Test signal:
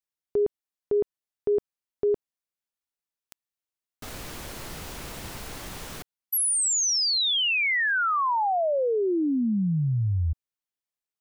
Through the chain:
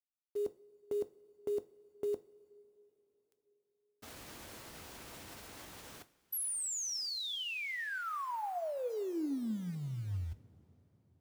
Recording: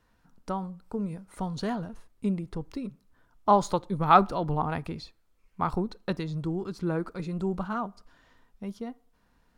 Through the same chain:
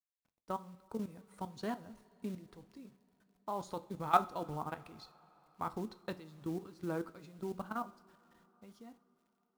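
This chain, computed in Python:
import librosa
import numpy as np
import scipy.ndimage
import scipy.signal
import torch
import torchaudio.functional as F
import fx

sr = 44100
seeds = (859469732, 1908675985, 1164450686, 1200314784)

y = fx.level_steps(x, sr, step_db=15)
y = fx.gate_hold(y, sr, open_db=-48.0, close_db=-58.0, hold_ms=479.0, range_db=-14, attack_ms=9.3, release_ms=106.0)
y = fx.highpass(y, sr, hz=120.0, slope=6)
y = fx.rider(y, sr, range_db=3, speed_s=2.0)
y = fx.quant_companded(y, sr, bits=6)
y = fx.rev_double_slope(y, sr, seeds[0], early_s=0.3, late_s=4.5, knee_db=-22, drr_db=11.0)
y = F.gain(torch.from_numpy(y), -7.5).numpy()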